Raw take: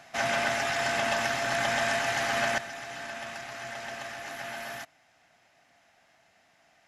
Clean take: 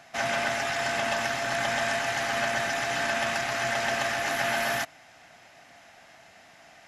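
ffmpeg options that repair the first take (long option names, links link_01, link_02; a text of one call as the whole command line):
ffmpeg -i in.wav -af "asetnsamples=nb_out_samples=441:pad=0,asendcmd='2.58 volume volume 11dB',volume=0dB" out.wav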